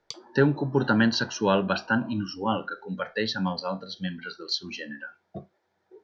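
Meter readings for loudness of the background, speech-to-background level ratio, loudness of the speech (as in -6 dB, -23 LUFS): -43.0 LUFS, 16.0 dB, -27.0 LUFS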